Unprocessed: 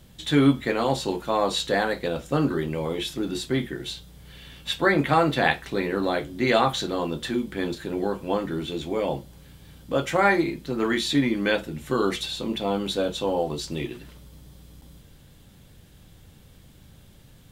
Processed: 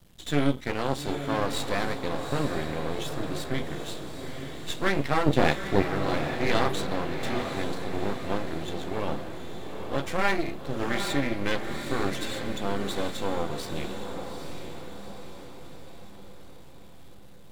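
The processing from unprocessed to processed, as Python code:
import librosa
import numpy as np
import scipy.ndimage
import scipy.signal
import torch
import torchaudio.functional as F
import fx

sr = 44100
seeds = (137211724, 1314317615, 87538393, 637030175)

y = fx.low_shelf_res(x, sr, hz=710.0, db=8.0, q=1.5, at=(5.26, 5.83))
y = np.maximum(y, 0.0)
y = fx.echo_diffused(y, sr, ms=839, feedback_pct=52, wet_db=-6.5)
y = F.gain(torch.from_numpy(y), -2.0).numpy()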